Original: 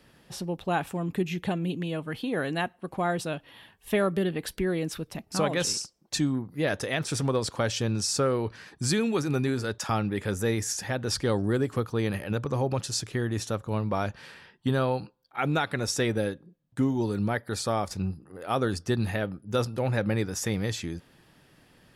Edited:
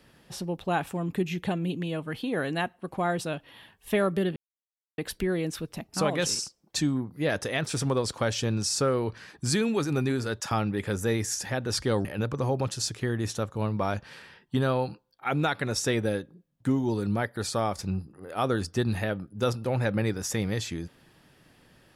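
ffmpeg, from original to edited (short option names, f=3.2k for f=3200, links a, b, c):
-filter_complex "[0:a]asplit=3[a][b][c];[a]atrim=end=4.36,asetpts=PTS-STARTPTS,afade=t=out:st=4.356:d=0.004:c=hsin,apad=pad_dur=0.62[d];[b]atrim=start=4.36:end=11.432,asetpts=PTS-STARTPTS,afade=t=in:d=0.004:c=hsin[e];[c]atrim=start=12.168[f];[d][e]concat=n=2:v=0:a=1[g];[g][f]acrossfade=d=0.004:c1=hsin:c2=hsin"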